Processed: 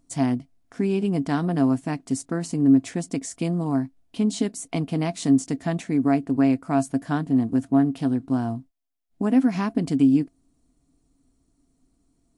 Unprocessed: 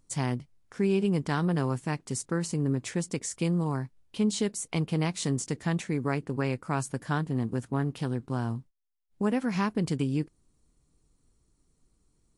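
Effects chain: small resonant body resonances 270/680 Hz, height 16 dB, ringing for 90 ms

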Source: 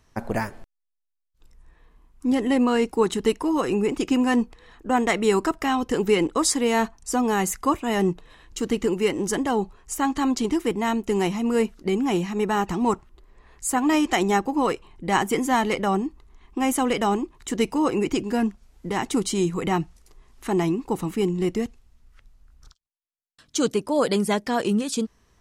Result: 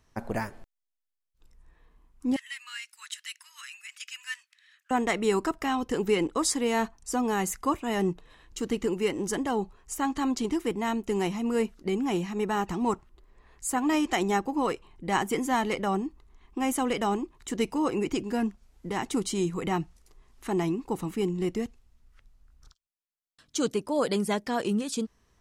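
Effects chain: 2.36–4.91 s: steep high-pass 1.6 kHz 36 dB/octave; trim -5 dB

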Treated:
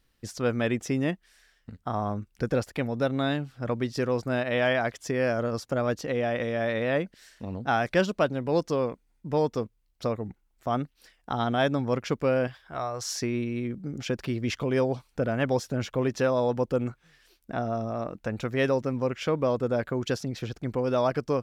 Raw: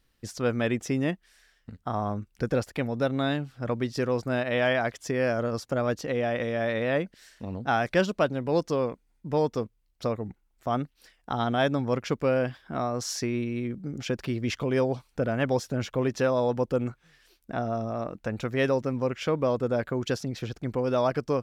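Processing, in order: 12.47–13.12 s: peaking EQ 230 Hz -14.5 dB 1.2 oct

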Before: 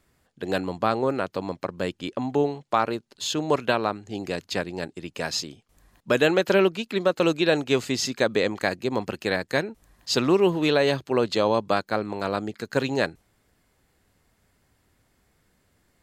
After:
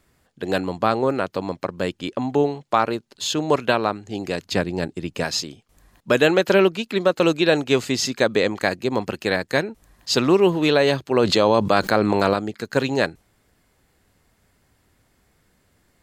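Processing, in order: 4.46–5.24 s: bass shelf 330 Hz +7 dB; 11.16–12.34 s: level flattener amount 70%; trim +3.5 dB

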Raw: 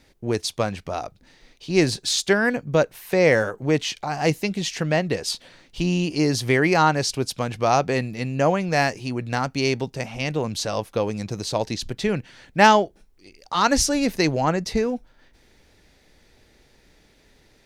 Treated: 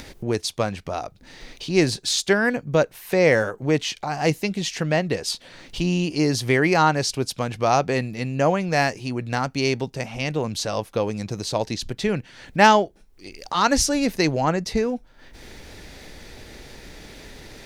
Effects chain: upward compressor, threshold -27 dBFS

